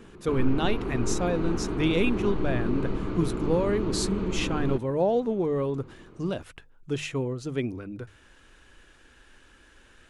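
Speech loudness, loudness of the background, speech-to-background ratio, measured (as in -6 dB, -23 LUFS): -29.0 LUFS, -31.5 LUFS, 2.5 dB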